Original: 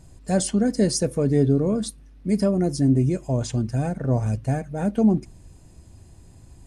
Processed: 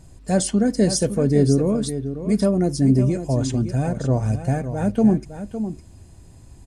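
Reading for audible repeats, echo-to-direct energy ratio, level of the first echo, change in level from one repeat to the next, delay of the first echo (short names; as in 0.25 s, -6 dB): 1, -10.5 dB, -10.5 dB, no steady repeat, 0.559 s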